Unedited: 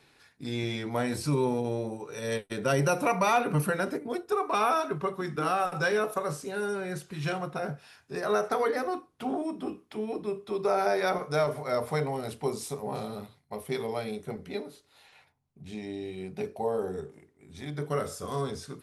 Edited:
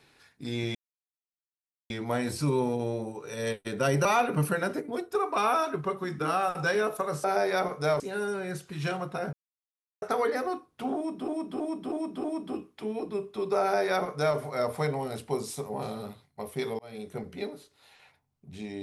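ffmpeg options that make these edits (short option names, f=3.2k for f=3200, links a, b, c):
-filter_complex "[0:a]asplit=12[a][b][c][d][e][f][g][h][i][j][k][l];[a]atrim=end=0.75,asetpts=PTS-STARTPTS,afade=t=out:st=0.746:d=0.004:c=hsin,apad=pad_dur=1.15[m];[b]atrim=start=0.75:end=2.902,asetpts=PTS-STARTPTS,afade=t=in:d=0.004:c=hsin[n];[c]atrim=start=3.218:end=6.412[o];[d]atrim=start=10.738:end=11.502[p];[e]atrim=start=6.408:end=7.74,asetpts=PTS-STARTPTS,afade=t=out:st=1.328:d=0.004:c=hsin[q];[f]atrim=start=7.74:end=8.43,asetpts=PTS-STARTPTS,volume=0[r];[g]atrim=start=8.43:end=9.692,asetpts=PTS-STARTPTS,afade=t=in:d=0.004:c=hsin[s];[h]atrim=start=9.368:end=9.692[t];[i]atrim=start=9.368:end=9.692[u];[j]atrim=start=9.368:end=9.692[v];[k]atrim=start=9.368:end=13.92,asetpts=PTS-STARTPTS,afade=t=out:st=4.548:d=0.004:c=hsin[w];[l]atrim=start=13.92,asetpts=PTS-STARTPTS,afade=t=in:d=0.33[x];[m][n]concat=n=2:v=0:a=1[y];[y][o]acrossfade=d=0.004:c1=hsin:c2=hsin[z];[z][p]acrossfade=d=0.004:c1=hsin:c2=hsin[aa];[q][r][s]concat=n=3:v=0:a=1[ab];[aa][ab]acrossfade=d=0.004:c1=hsin:c2=hsin[ac];[ac][t]acrossfade=d=0.004:c1=hsin:c2=hsin[ad];[ad][u]acrossfade=d=0.004:c1=hsin:c2=hsin[ae];[ae][v]acrossfade=d=0.004:c1=hsin:c2=hsin[af];[w][x]concat=n=2:v=0:a=1[ag];[af][ag]acrossfade=d=0.004:c1=hsin:c2=hsin"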